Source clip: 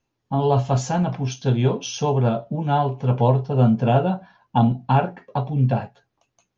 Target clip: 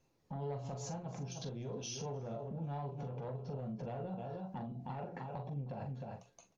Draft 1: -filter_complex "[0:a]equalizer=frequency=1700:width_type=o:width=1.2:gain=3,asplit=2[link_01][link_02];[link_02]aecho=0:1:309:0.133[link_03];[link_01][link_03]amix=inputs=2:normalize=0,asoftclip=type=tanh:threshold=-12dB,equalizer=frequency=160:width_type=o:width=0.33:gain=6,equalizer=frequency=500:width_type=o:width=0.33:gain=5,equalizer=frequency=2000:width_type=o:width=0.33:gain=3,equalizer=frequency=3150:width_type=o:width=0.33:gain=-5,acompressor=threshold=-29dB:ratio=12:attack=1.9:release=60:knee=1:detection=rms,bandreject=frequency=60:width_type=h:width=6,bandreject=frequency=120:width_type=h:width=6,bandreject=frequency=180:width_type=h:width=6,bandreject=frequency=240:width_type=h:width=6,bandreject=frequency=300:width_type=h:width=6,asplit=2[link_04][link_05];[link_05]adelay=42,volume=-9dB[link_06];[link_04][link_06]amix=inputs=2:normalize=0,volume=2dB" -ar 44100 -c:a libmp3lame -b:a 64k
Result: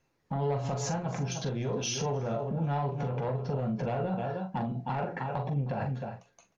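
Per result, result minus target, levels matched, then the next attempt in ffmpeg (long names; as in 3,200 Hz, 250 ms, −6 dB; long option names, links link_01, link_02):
downward compressor: peak gain reduction −10.5 dB; 2,000 Hz band +4.5 dB
-filter_complex "[0:a]equalizer=frequency=1700:width_type=o:width=1.2:gain=3,asplit=2[link_01][link_02];[link_02]aecho=0:1:309:0.133[link_03];[link_01][link_03]amix=inputs=2:normalize=0,asoftclip=type=tanh:threshold=-12dB,equalizer=frequency=160:width_type=o:width=0.33:gain=6,equalizer=frequency=500:width_type=o:width=0.33:gain=5,equalizer=frequency=2000:width_type=o:width=0.33:gain=3,equalizer=frequency=3150:width_type=o:width=0.33:gain=-5,acompressor=threshold=-40.5dB:ratio=12:attack=1.9:release=60:knee=1:detection=rms,bandreject=frequency=60:width_type=h:width=6,bandreject=frequency=120:width_type=h:width=6,bandreject=frequency=180:width_type=h:width=6,bandreject=frequency=240:width_type=h:width=6,bandreject=frequency=300:width_type=h:width=6,asplit=2[link_04][link_05];[link_05]adelay=42,volume=-9dB[link_06];[link_04][link_06]amix=inputs=2:normalize=0,volume=2dB" -ar 44100 -c:a libmp3lame -b:a 64k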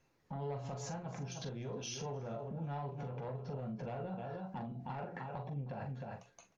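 2,000 Hz band +5.0 dB
-filter_complex "[0:a]equalizer=frequency=1700:width_type=o:width=1.2:gain=-5.5,asplit=2[link_01][link_02];[link_02]aecho=0:1:309:0.133[link_03];[link_01][link_03]amix=inputs=2:normalize=0,asoftclip=type=tanh:threshold=-12dB,equalizer=frequency=160:width_type=o:width=0.33:gain=6,equalizer=frequency=500:width_type=o:width=0.33:gain=5,equalizer=frequency=2000:width_type=o:width=0.33:gain=3,equalizer=frequency=3150:width_type=o:width=0.33:gain=-5,acompressor=threshold=-40.5dB:ratio=12:attack=1.9:release=60:knee=1:detection=rms,bandreject=frequency=60:width_type=h:width=6,bandreject=frequency=120:width_type=h:width=6,bandreject=frequency=180:width_type=h:width=6,bandreject=frequency=240:width_type=h:width=6,bandreject=frequency=300:width_type=h:width=6,asplit=2[link_04][link_05];[link_05]adelay=42,volume=-9dB[link_06];[link_04][link_06]amix=inputs=2:normalize=0,volume=2dB" -ar 44100 -c:a libmp3lame -b:a 64k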